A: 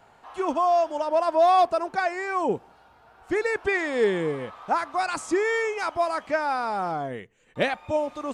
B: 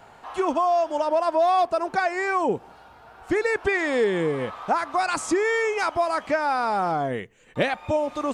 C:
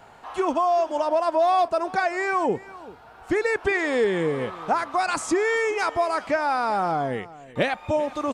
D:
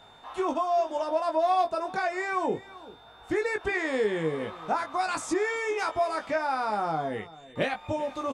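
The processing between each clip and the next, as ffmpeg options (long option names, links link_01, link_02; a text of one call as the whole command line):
ffmpeg -i in.wav -af "acompressor=threshold=-28dB:ratio=2.5,volume=6.5dB" out.wav
ffmpeg -i in.wav -af "aecho=1:1:390:0.112" out.wav
ffmpeg -i in.wav -filter_complex "[0:a]aeval=exprs='val(0)+0.00355*sin(2*PI*3600*n/s)':channel_layout=same,asplit=2[link_01][link_02];[link_02]adelay=19,volume=-5dB[link_03];[link_01][link_03]amix=inputs=2:normalize=0,volume=-6dB" out.wav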